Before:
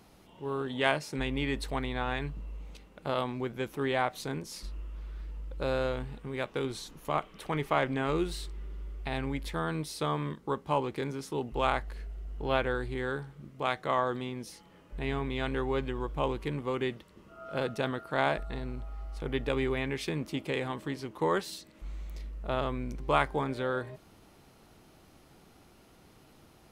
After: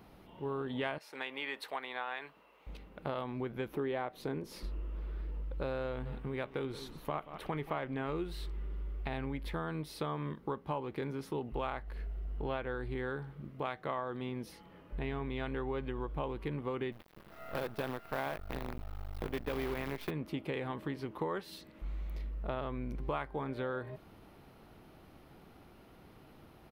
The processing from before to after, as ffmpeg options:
ffmpeg -i in.wav -filter_complex "[0:a]asettb=1/sr,asplit=3[link_01][link_02][link_03];[link_01]atrim=end=0.984[link_04];[link_02]atrim=start=0.98:end=2.67,asetpts=PTS-STARTPTS,afade=type=in:duration=0.004:curve=qsin,afade=type=out:start_time=1.686:duration=0.004:curve=qsin,highpass=700[link_05];[link_03]atrim=start=2.666[link_06];[link_04][link_05]acrossfade=duration=0.004:curve1=hsin:curve2=qsin[link_07];[link_07][link_06]acrossfade=duration=0.004:curve1=qsin:curve2=hsin,asettb=1/sr,asplit=3[link_08][link_09][link_10];[link_08]atrim=end=3.734[link_11];[link_09]atrim=start=3.73:end=5.43,asetpts=PTS-STARTPTS,afade=type=in:duration=0.004:curve=qsin,afade=type=out:start_time=1.696:duration=0.004:curve=qsin,equalizer=frequency=390:width=1:gain=6[link_12];[link_10]atrim=start=5.426[link_13];[link_11][link_12]acrossfade=duration=0.004:curve1=hsin:curve2=qsin[link_14];[link_14][link_13]acrossfade=duration=0.004:curve1=qsin:curve2=hsin,asplit=3[link_15][link_16][link_17];[link_15]afade=type=out:start_time=6.05:duration=0.02[link_18];[link_16]aecho=1:1:178:0.158,afade=type=in:start_time=6.05:duration=0.02,afade=type=out:start_time=7.84:duration=0.02[link_19];[link_17]afade=type=in:start_time=7.84:duration=0.02[link_20];[link_18][link_19][link_20]amix=inputs=3:normalize=0,asettb=1/sr,asplit=3[link_21][link_22][link_23];[link_21]atrim=end=16.924[link_24];[link_22]atrim=start=16.92:end=20.11,asetpts=PTS-STARTPTS,afade=type=in:duration=0.004:curve=qsin,afade=type=out:start_time=3.186:duration=0.004:curve=qsin,acrusher=bits=6:dc=4:mix=0:aa=0.000001[link_25];[link_23]atrim=start=20.106[link_26];[link_24][link_25]acrossfade=duration=0.004:curve1=hsin:curve2=qsin[link_27];[link_27][link_26]acrossfade=duration=0.004:curve1=qsin:curve2=hsin,equalizer=frequency=7300:width=0.88:gain=-14.5,acompressor=threshold=-36dB:ratio=4,volume=1.5dB" out.wav

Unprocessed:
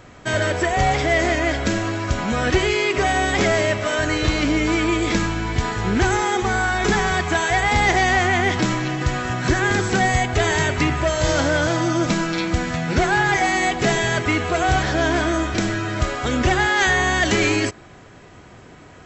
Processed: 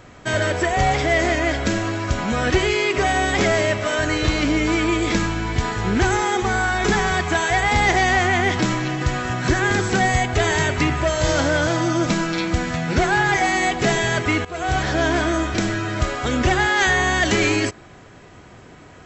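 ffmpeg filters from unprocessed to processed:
ffmpeg -i in.wav -filter_complex "[0:a]asplit=2[link_01][link_02];[link_01]atrim=end=14.45,asetpts=PTS-STARTPTS,afade=type=out:start_time=14.446:duration=0.004:curve=hsin:silence=0.133352[link_03];[link_02]atrim=start=14.45,asetpts=PTS-STARTPTS,afade=type=in:duration=0.57:curve=qsin:silence=0.133352[link_04];[link_03][link_04]concat=n=2:v=0:a=1" out.wav

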